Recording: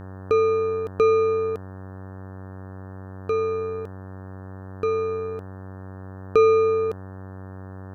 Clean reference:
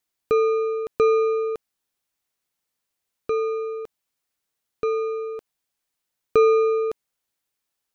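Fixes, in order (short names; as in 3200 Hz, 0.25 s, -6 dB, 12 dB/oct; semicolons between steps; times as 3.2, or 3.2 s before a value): de-hum 94.8 Hz, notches 19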